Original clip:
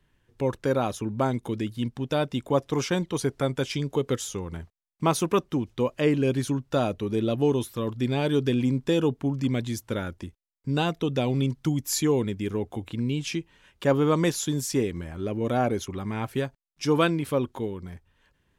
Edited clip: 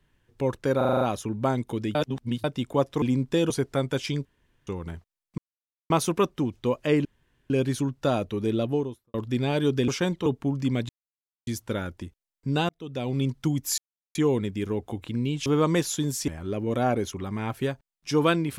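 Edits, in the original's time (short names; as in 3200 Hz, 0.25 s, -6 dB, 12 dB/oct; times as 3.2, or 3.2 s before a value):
0.77 stutter 0.04 s, 7 plays
1.71–2.2 reverse
2.78–3.16 swap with 8.57–9.05
3.91–4.33 room tone
5.04 insert silence 0.52 s
6.19 insert room tone 0.45 s
7.23–7.83 studio fade out
9.68 insert silence 0.58 s
10.9–11.49 fade in
11.99 insert silence 0.37 s
13.3–13.95 cut
14.77–15.02 cut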